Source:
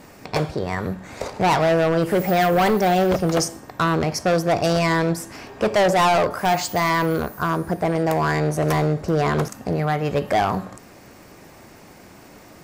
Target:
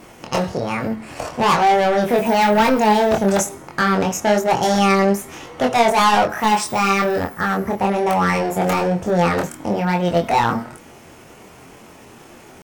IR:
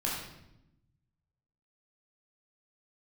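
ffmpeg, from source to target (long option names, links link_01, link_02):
-af "asetrate=52444,aresample=44100,atempo=0.840896,flanger=delay=22.5:depth=3.4:speed=1.1,volume=5.5dB"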